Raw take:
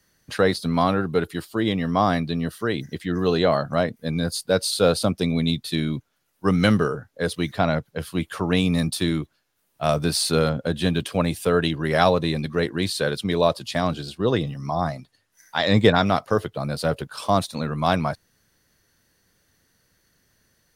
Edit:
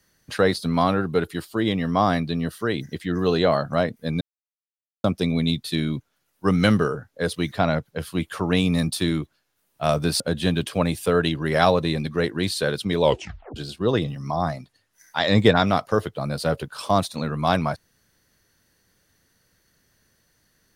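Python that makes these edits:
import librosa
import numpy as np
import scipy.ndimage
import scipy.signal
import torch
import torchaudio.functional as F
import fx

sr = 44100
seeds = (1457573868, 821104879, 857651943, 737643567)

y = fx.edit(x, sr, fx.silence(start_s=4.21, length_s=0.83),
    fx.cut(start_s=10.2, length_s=0.39),
    fx.tape_stop(start_s=13.4, length_s=0.55), tone=tone)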